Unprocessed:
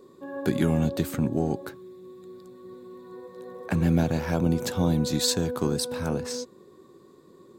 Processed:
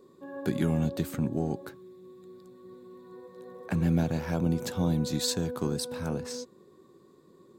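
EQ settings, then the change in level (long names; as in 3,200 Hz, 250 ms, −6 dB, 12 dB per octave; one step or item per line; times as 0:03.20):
parametric band 170 Hz +2.5 dB
−5.0 dB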